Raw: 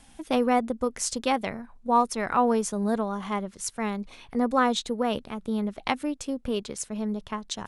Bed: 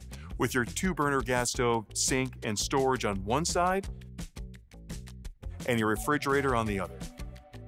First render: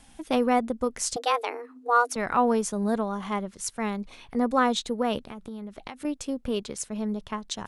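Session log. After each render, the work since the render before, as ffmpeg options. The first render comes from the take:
-filter_complex "[0:a]asettb=1/sr,asplit=3[a][b][c];[a]atrim=end=1.164[d];[b]atrim=start=1.16:end=2.16,asetpts=PTS-STARTPTS,afade=t=in:d=0.004:c=qsin,afade=t=out:st=0.996:d=0.004:c=qsin,afreqshift=240[e];[c]atrim=start=2.156[f];[d][e]acrossfade=d=0.004:c1=hsin:c2=qsin[g];[g][f]acrossfade=d=0.004:c1=qsin:c2=hsin,asettb=1/sr,asplit=3[h][i][j];[h]atrim=end=5.204[k];[i]atrim=start=5.2:end=6.05,asetpts=PTS-STARTPTS,afade=t=in:d=0.004:c=qsin,afade=t=out:st=0.846:d=0.004:c=qsin,acompressor=threshold=-34dB:ratio=10:attack=3.2:release=140:knee=1:detection=peak[l];[j]atrim=start=6.046[m];[k][l]acrossfade=d=0.004:c1=hsin:c2=qsin[n];[n][m]acrossfade=d=0.004:c1=qsin:c2=hsin"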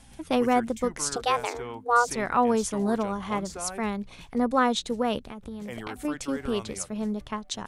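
-filter_complex "[1:a]volume=-11dB[a];[0:a][a]amix=inputs=2:normalize=0"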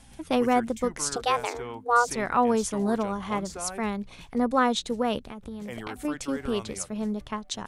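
-af anull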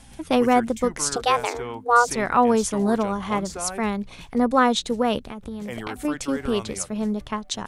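-af "volume=4.5dB"

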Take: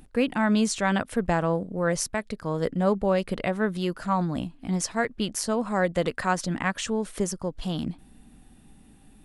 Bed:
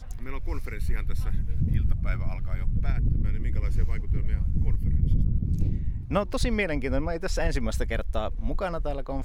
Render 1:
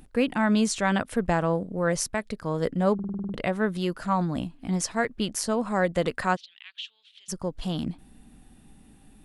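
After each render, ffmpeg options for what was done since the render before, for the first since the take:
-filter_complex "[0:a]asplit=3[a][b][c];[a]afade=t=out:st=6.35:d=0.02[d];[b]asuperpass=centerf=3300:order=4:qfactor=2.7,afade=t=in:st=6.35:d=0.02,afade=t=out:st=7.28:d=0.02[e];[c]afade=t=in:st=7.28:d=0.02[f];[d][e][f]amix=inputs=3:normalize=0,asplit=9[g][h][i][j][k][l][m][n][o];[g]atrim=end=2.992[p];[h]atrim=start=2.938:end=2.992[q];[i]atrim=start=2.938:end=2.992[r];[j]atrim=start=2.938:end=2.992[s];[k]atrim=start=2.938:end=2.992[t];[l]atrim=start=2.938:end=2.992[u];[m]atrim=start=2.938:end=2.992[v];[n]atrim=start=2.938:end=2.992[w];[o]atrim=start=3.338[x];[p][q]acrossfade=d=0.004:c1=hsin:c2=hsin[y];[y][r]acrossfade=d=0.004:c1=hsin:c2=hsin[z];[z][s]acrossfade=d=0.004:c1=hsin:c2=hsin[aa];[aa][t]acrossfade=d=0.004:c1=hsin:c2=hsin[ab];[ab][u]acrossfade=d=0.004:c1=hsin:c2=hsin[ac];[ac][v]acrossfade=d=0.004:c1=hsin:c2=hsin[ad];[ad][w]acrossfade=d=0.004:c1=hsin:c2=hsin[ae];[ae][x]acrossfade=d=0.004:c1=hsin:c2=hsin"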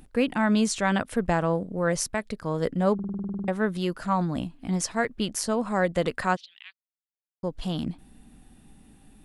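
-filter_complex "[0:a]asplit=7[a][b][c][d][e][f][g];[a]atrim=end=3.332[h];[b]atrim=start=3.278:end=3.332[i];[c]atrim=start=3.278:end=3.332[j];[d]atrim=start=3.278:end=3.332[k];[e]atrim=start=3.478:end=6.73,asetpts=PTS-STARTPTS,afade=t=out:st=3.248:d=0.004:c=hsin[l];[f]atrim=start=6.73:end=7.43,asetpts=PTS-STARTPTS,volume=0[m];[g]atrim=start=7.43,asetpts=PTS-STARTPTS,afade=t=in:d=0.004:c=hsin[n];[h][i]acrossfade=d=0.004:c1=hsin:c2=hsin[o];[o][j]acrossfade=d=0.004:c1=hsin:c2=hsin[p];[p][k]acrossfade=d=0.004:c1=hsin:c2=hsin[q];[l][m][n]concat=n=3:v=0:a=1[r];[q][r]acrossfade=d=0.004:c1=hsin:c2=hsin"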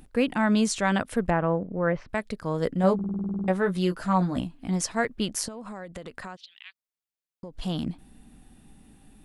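-filter_complex "[0:a]asettb=1/sr,asplit=3[a][b][c];[a]atrim=end=1.304[d];[b]atrim=start=1.3:end=2.09,asetpts=PTS-STARTPTS,afade=t=in:d=0.004:c=qsin,afade=t=out:st=0.786:d=0.004:c=qsin,lowpass=f=2.5k:w=0.5412,lowpass=f=2.5k:w=1.3066[e];[c]atrim=start=2.086[f];[d][e]acrossfade=d=0.004:c1=hsin:c2=qsin[g];[g][f]acrossfade=d=0.004:c1=qsin:c2=hsin,asettb=1/sr,asplit=3[h][i][j];[h]atrim=end=2.824[k];[i]atrim=start=2.82:end=4.41,asetpts=PTS-STARTPTS,afade=t=in:d=0.004:c=qsin,afade=t=out:st=1.586:d=0.004:c=qsin,asplit=2[l][m];[m]adelay=16,volume=-5dB[n];[l][n]amix=inputs=2:normalize=0,atrim=end_sample=70119[o];[j]atrim=start=4.406[p];[k][o]acrossfade=d=0.004:c1=hsin:c2=qsin[q];[q][p]acrossfade=d=0.004:c1=qsin:c2=hsin,asettb=1/sr,asplit=3[r][s][t];[r]atrim=end=5.484[u];[s]atrim=start=5.48:end=7.54,asetpts=PTS-STARTPTS,afade=t=in:d=0.004:c=qsin,afade=t=out:st=2.056:d=0.004:c=qsin,acompressor=threshold=-34dB:ratio=16:attack=3.2:release=140:knee=1:detection=peak[v];[t]atrim=start=7.536[w];[u][v]acrossfade=d=0.004:c1=hsin:c2=qsin[x];[x][w]acrossfade=d=0.004:c1=qsin:c2=hsin"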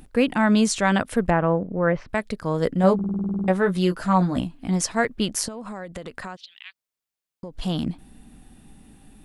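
-af "volume=4dB"

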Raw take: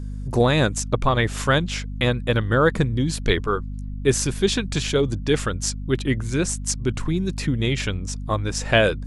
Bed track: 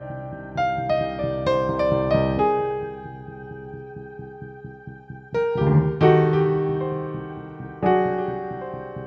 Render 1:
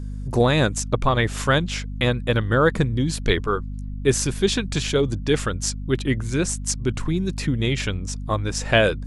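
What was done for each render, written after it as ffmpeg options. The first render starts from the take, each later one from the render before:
-af anull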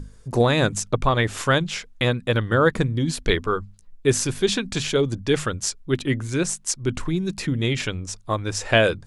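-af "bandreject=f=50:t=h:w=6,bandreject=f=100:t=h:w=6,bandreject=f=150:t=h:w=6,bandreject=f=200:t=h:w=6,bandreject=f=250:t=h:w=6"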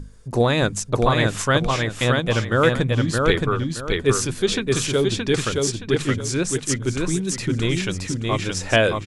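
-af "aecho=1:1:621|1242|1863|2484:0.708|0.198|0.0555|0.0155"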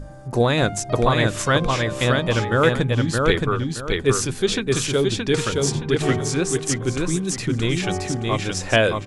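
-filter_complex "[1:a]volume=-10dB[a];[0:a][a]amix=inputs=2:normalize=0"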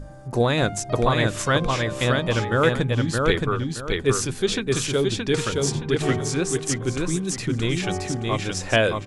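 -af "volume=-2dB"

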